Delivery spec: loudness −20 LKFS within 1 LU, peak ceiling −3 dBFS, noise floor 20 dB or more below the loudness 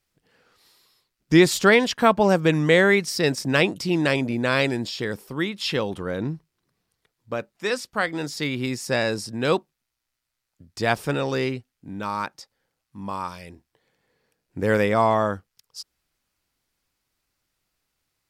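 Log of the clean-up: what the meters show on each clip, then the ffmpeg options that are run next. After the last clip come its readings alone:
integrated loudness −22.5 LKFS; sample peak −3.0 dBFS; target loudness −20.0 LKFS
→ -af "volume=2.5dB,alimiter=limit=-3dB:level=0:latency=1"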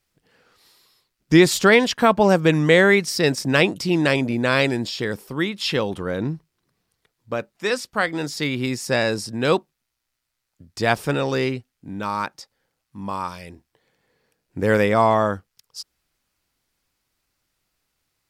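integrated loudness −20.5 LKFS; sample peak −3.0 dBFS; background noise floor −79 dBFS

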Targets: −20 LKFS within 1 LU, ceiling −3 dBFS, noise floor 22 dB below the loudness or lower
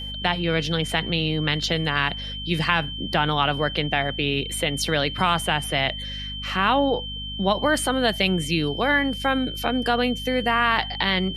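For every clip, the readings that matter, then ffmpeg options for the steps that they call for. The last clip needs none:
mains hum 50 Hz; hum harmonics up to 250 Hz; level of the hum −34 dBFS; interfering tone 3,100 Hz; level of the tone −32 dBFS; integrated loudness −23.0 LKFS; sample peak −4.0 dBFS; target loudness −20.0 LKFS
→ -af "bandreject=frequency=50:width_type=h:width=4,bandreject=frequency=100:width_type=h:width=4,bandreject=frequency=150:width_type=h:width=4,bandreject=frequency=200:width_type=h:width=4,bandreject=frequency=250:width_type=h:width=4"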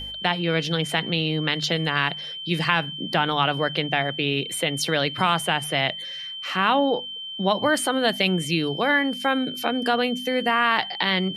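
mains hum none found; interfering tone 3,100 Hz; level of the tone −32 dBFS
→ -af "bandreject=frequency=3100:width=30"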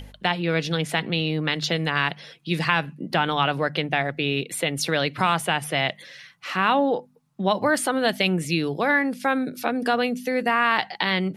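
interfering tone none found; integrated loudness −23.5 LKFS; sample peak −4.0 dBFS; target loudness −20.0 LKFS
→ -af "volume=3.5dB,alimiter=limit=-3dB:level=0:latency=1"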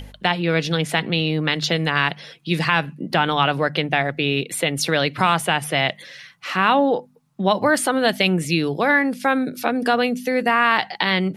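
integrated loudness −20.0 LKFS; sample peak −3.0 dBFS; background noise floor −50 dBFS

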